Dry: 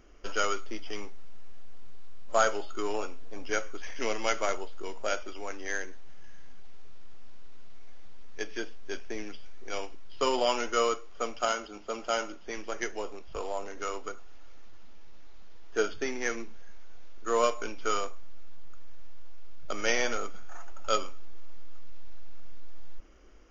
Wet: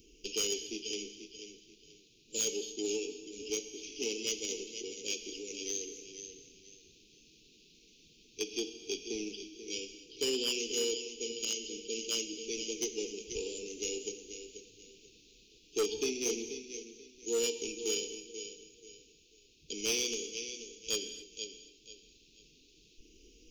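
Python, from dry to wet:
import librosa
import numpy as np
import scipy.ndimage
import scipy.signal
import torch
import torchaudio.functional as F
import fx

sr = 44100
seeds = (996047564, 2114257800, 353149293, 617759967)

p1 = fx.high_shelf(x, sr, hz=4000.0, db=7.5)
p2 = fx.comb_fb(p1, sr, f0_hz=160.0, decay_s=1.6, harmonics='all', damping=0.0, mix_pct=50)
p3 = p2 + fx.echo_feedback(p2, sr, ms=486, feedback_pct=27, wet_db=-10, dry=0)
p4 = fx.rider(p3, sr, range_db=4, speed_s=2.0)
p5 = scipy.signal.sosfilt(scipy.signal.cheby1(5, 1.0, [460.0, 2500.0], 'bandstop', fs=sr, output='sos'), p4)
p6 = 10.0 ** (-25.0 / 20.0) * np.tanh(p5 / 10.0 ** (-25.0 / 20.0))
p7 = p5 + (p6 * 10.0 ** (-4.5 / 20.0))
p8 = fx.highpass(p7, sr, hz=54.0, slope=6)
p9 = fx.low_shelf(p8, sr, hz=280.0, db=-6.0)
p10 = fx.rev_gated(p9, sr, seeds[0], gate_ms=290, shape='flat', drr_db=11.0)
p11 = np.clip(p10, -10.0 ** (-28.5 / 20.0), 10.0 ** (-28.5 / 20.0))
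y = p11 * 10.0 ** (2.5 / 20.0)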